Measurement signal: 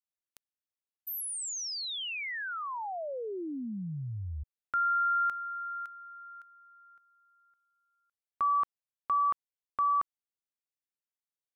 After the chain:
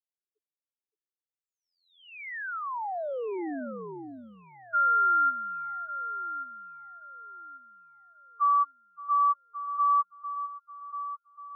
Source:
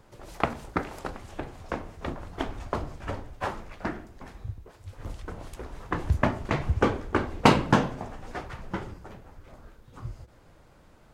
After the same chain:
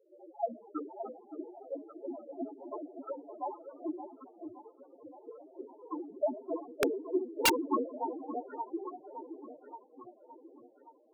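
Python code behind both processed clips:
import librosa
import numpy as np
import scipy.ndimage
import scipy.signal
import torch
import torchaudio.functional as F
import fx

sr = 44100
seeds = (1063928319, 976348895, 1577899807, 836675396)

p1 = fx.env_lowpass(x, sr, base_hz=1100.0, full_db=-23.0)
p2 = scipy.signal.sosfilt(scipy.signal.butter(4, 270.0, 'highpass', fs=sr, output='sos'), p1)
p3 = fx.env_lowpass(p2, sr, base_hz=750.0, full_db=-30.0)
p4 = fx.high_shelf(p3, sr, hz=7500.0, db=-2.5)
p5 = fx.spec_topn(p4, sr, count=2)
p6 = p5 + fx.echo_alternate(p5, sr, ms=569, hz=860.0, feedback_pct=59, wet_db=-8.0, dry=0)
p7 = (np.mod(10.0 ** (23.5 / 20.0) * p6 + 1.0, 2.0) - 1.0) / 10.0 ** (23.5 / 20.0)
y = p7 * 10.0 ** (5.0 / 20.0)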